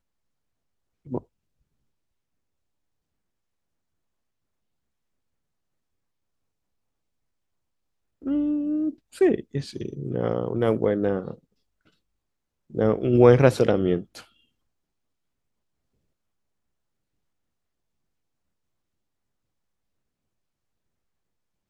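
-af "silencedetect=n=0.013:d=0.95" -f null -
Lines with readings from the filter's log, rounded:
silence_start: 0.00
silence_end: 1.07 | silence_duration: 1.07
silence_start: 1.19
silence_end: 8.24 | silence_duration: 7.05
silence_start: 11.34
silence_end: 12.74 | silence_duration: 1.40
silence_start: 14.21
silence_end: 21.69 | silence_duration: 7.48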